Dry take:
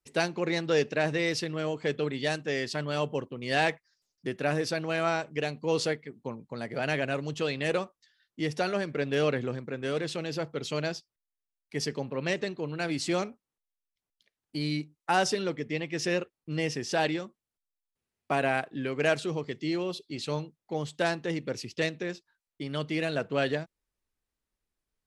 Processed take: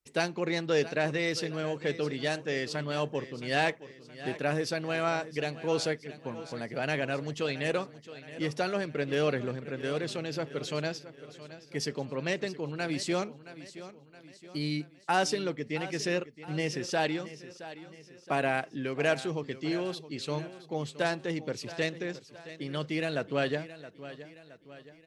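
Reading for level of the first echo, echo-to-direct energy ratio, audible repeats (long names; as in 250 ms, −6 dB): −15.0 dB, −14.0 dB, 4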